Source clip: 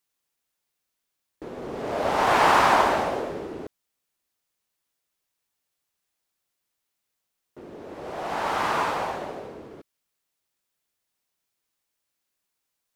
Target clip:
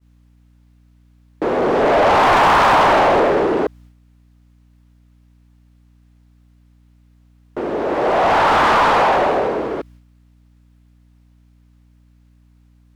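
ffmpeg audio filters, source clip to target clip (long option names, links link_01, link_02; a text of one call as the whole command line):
ffmpeg -i in.wav -filter_complex "[0:a]asplit=2[link_01][link_02];[link_02]highpass=frequency=720:poles=1,volume=29dB,asoftclip=type=tanh:threshold=-7dB[link_03];[link_01][link_03]amix=inputs=2:normalize=0,lowpass=frequency=1200:poles=1,volume=-6dB,aeval=exprs='val(0)+0.00398*(sin(2*PI*60*n/s)+sin(2*PI*2*60*n/s)/2+sin(2*PI*3*60*n/s)/3+sin(2*PI*4*60*n/s)/4+sin(2*PI*5*60*n/s)/5)':channel_layout=same,agate=range=-33dB:threshold=-43dB:ratio=3:detection=peak,asplit=2[link_04][link_05];[link_05]asoftclip=type=tanh:threshold=-17.5dB,volume=-3.5dB[link_06];[link_04][link_06]amix=inputs=2:normalize=0" out.wav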